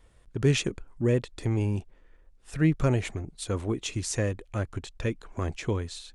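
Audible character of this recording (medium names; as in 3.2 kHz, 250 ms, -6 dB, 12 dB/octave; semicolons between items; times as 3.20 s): noise floor -59 dBFS; spectral tilt -6.0 dB/octave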